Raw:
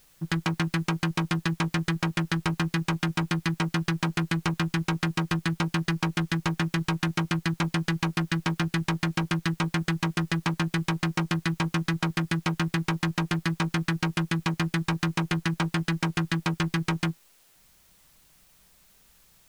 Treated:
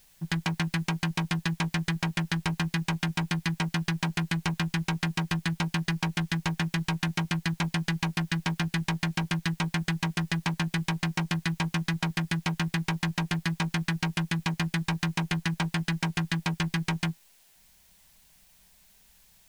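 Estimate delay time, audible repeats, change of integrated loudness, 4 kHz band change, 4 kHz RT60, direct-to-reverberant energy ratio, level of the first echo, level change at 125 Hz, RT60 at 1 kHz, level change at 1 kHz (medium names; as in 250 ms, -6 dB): no echo, no echo, -1.5 dB, 0.0 dB, no reverb, no reverb, no echo, -1.5 dB, no reverb, -3.0 dB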